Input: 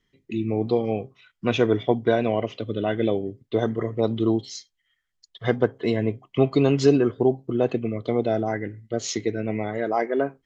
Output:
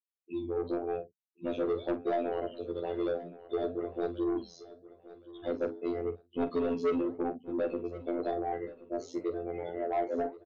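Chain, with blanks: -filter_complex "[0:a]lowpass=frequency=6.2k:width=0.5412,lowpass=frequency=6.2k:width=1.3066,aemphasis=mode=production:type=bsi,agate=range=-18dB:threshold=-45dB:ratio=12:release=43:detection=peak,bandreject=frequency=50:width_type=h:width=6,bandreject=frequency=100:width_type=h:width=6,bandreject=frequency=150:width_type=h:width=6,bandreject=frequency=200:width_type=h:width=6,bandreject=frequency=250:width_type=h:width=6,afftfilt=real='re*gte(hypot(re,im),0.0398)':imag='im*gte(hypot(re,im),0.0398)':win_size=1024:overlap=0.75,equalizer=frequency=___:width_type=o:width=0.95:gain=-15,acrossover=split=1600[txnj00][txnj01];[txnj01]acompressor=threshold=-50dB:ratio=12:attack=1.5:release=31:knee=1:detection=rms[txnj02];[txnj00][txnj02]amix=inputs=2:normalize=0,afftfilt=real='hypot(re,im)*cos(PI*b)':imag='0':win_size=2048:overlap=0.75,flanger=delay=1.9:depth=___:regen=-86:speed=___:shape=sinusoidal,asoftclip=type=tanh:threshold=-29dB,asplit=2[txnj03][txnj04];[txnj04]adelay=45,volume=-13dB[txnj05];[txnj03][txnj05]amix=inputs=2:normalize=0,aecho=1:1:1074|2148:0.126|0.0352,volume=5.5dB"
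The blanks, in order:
1.7k, 8.8, 0.95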